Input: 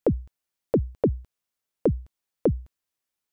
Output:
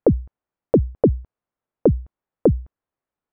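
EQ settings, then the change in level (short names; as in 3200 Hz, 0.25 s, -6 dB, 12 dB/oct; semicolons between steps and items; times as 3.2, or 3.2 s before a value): LPF 1200 Hz 12 dB/oct; +6.5 dB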